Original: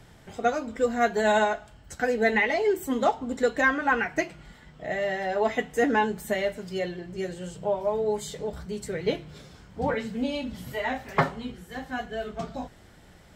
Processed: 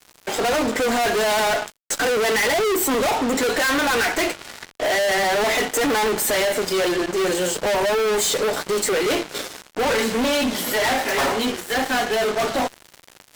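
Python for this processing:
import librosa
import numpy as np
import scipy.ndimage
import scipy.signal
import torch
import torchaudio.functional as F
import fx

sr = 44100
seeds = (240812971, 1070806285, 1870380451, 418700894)

y = scipy.signal.sosfilt(scipy.signal.butter(4, 290.0, 'highpass', fs=sr, output='sos'), x)
y = fx.high_shelf(y, sr, hz=4700.0, db=2.5)
y = fx.fuzz(y, sr, gain_db=46.0, gate_db=-50.0)
y = y * librosa.db_to_amplitude(-5.5)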